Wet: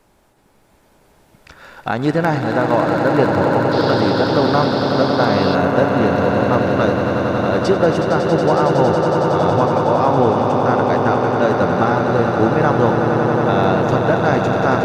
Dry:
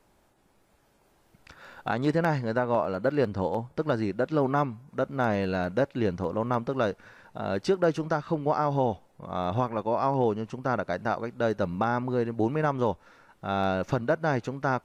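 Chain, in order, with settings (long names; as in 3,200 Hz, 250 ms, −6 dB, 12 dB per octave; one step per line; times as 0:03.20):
echo that builds up and dies away 92 ms, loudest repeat 8, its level −8.5 dB
0:03.71–0:05.54: noise in a band 3,300–5,100 Hz −40 dBFS
level +8 dB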